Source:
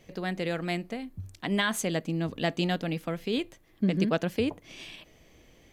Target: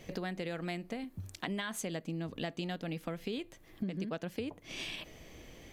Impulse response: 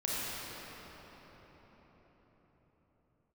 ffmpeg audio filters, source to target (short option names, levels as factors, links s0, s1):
-filter_complex "[0:a]asettb=1/sr,asplit=3[s0][s1][s2];[s0]atrim=end=1.044[s3];[s1]atrim=start=1.04:end=1.48,asetpts=PTS-STARTPTS,afade=t=in:d=0.004:c=qsin,afade=t=out:st=0.436:d=0.004:c=qsin,lowshelf=f=140:g=-11.5[s4];[s2]atrim=start=1.476[s5];[s3][s4]acrossfade=d=0.004:c1=hsin:c2=qsin[s6];[s6][s5]acrossfade=d=0.004:c1=qsin:c2=hsin,acompressor=threshold=0.00891:ratio=6,volume=1.78"